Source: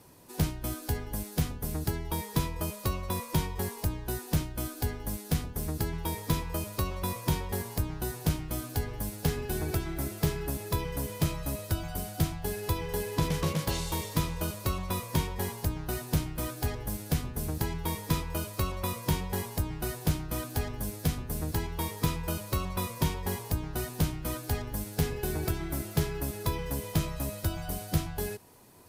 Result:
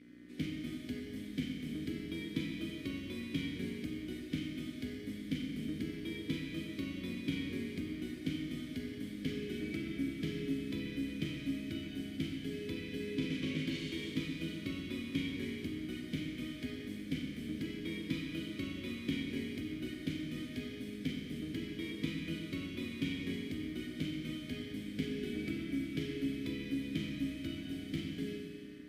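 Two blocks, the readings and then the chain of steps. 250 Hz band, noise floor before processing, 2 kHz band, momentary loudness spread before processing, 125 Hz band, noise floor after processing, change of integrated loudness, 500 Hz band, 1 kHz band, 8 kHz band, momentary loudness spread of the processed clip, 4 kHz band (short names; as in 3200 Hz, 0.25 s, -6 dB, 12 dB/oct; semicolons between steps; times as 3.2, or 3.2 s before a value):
-1.0 dB, -44 dBFS, -4.0 dB, 4 LU, -12.5 dB, -46 dBFS, -7.0 dB, -8.5 dB, -25.5 dB, -19.5 dB, 4 LU, -4.5 dB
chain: buzz 60 Hz, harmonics 34, -51 dBFS -4 dB/oct; vowel filter i; Schroeder reverb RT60 2.4 s, combs from 30 ms, DRR 0.5 dB; gain +6 dB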